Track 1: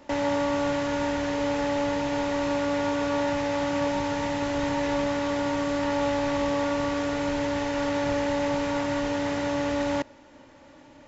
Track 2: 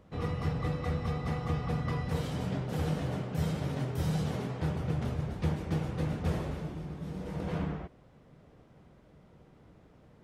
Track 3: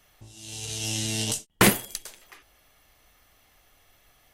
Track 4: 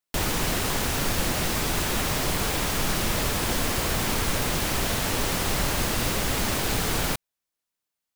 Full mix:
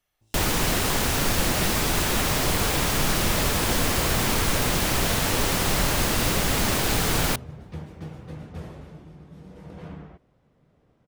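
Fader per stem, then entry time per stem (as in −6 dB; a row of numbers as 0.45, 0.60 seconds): muted, −6.0 dB, −17.0 dB, +2.5 dB; muted, 2.30 s, 0.00 s, 0.20 s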